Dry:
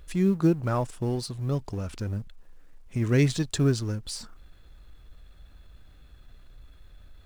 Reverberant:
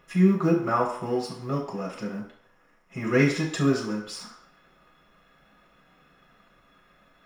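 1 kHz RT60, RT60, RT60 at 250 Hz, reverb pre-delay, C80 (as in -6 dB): 0.60 s, 0.60 s, 0.50 s, 3 ms, 9.0 dB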